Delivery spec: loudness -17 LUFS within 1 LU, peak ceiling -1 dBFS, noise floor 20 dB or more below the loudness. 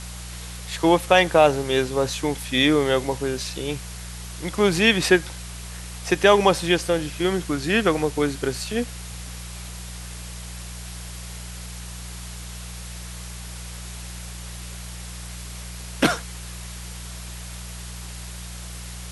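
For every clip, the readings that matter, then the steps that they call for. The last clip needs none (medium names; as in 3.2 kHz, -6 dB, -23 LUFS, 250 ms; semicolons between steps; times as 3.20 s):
hum 60 Hz; highest harmonic 180 Hz; hum level -35 dBFS; noise floor -36 dBFS; noise floor target -42 dBFS; loudness -21.5 LUFS; peak level -2.0 dBFS; loudness target -17.0 LUFS
-> de-hum 60 Hz, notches 3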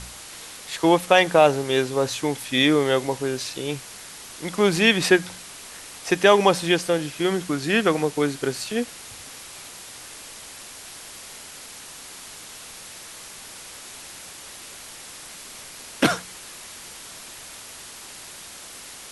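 hum not found; noise floor -41 dBFS; noise floor target -42 dBFS
-> noise reduction 6 dB, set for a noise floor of -41 dBFS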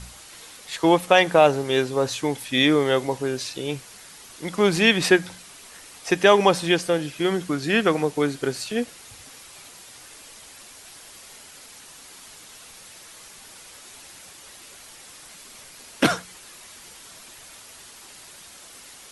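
noise floor -46 dBFS; loudness -21.5 LUFS; peak level -2.0 dBFS; loudness target -17.0 LUFS
-> trim +4.5 dB; peak limiter -1 dBFS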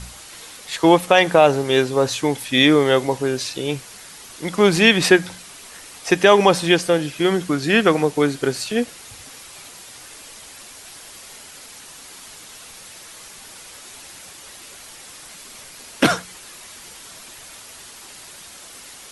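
loudness -17.5 LUFS; peak level -1.0 dBFS; noise floor -41 dBFS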